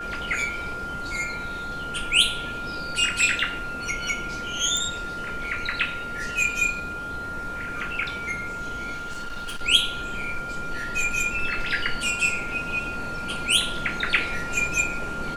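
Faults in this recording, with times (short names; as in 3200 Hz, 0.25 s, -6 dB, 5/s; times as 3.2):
tone 1400 Hz -31 dBFS
4.77 pop
8.93–9.63 clipped -29 dBFS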